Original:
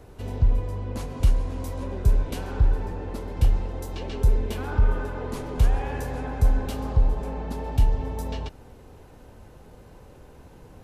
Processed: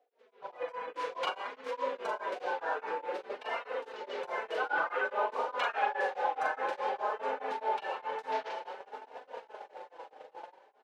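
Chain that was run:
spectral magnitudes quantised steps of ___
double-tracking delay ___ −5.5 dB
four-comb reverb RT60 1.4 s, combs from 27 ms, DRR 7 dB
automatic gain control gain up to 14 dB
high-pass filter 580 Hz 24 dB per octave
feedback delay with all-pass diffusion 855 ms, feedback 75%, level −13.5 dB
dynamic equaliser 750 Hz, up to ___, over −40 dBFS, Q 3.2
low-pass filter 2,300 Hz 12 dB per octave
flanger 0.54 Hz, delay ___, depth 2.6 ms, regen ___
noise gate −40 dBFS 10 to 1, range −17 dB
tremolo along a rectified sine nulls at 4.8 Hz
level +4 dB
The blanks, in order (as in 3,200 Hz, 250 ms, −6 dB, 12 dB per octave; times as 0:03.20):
30 dB, 41 ms, −3 dB, 3.9 ms, −6%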